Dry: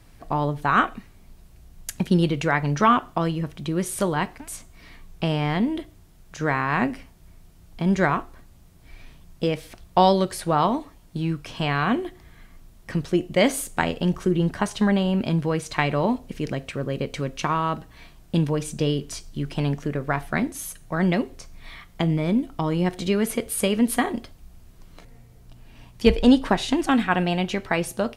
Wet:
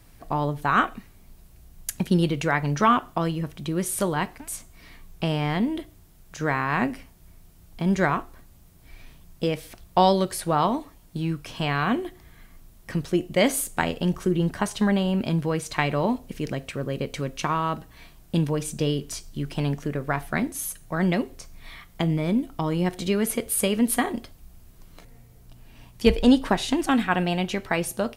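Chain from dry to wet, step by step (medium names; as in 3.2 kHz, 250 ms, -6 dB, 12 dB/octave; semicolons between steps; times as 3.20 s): treble shelf 11 kHz +10.5 dB; trim -1.5 dB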